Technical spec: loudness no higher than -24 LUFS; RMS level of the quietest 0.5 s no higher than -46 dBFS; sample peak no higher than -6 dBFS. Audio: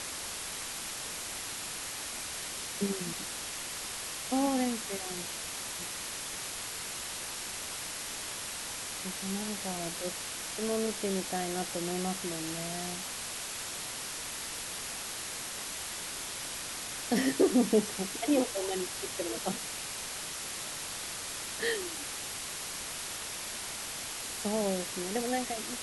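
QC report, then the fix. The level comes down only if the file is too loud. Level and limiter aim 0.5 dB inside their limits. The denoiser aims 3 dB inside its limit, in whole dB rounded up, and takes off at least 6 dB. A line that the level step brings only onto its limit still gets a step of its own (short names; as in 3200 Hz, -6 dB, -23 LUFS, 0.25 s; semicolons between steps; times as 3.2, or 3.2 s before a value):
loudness -34.0 LUFS: OK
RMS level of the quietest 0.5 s -39 dBFS: fail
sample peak -13.5 dBFS: OK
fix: denoiser 10 dB, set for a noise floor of -39 dBFS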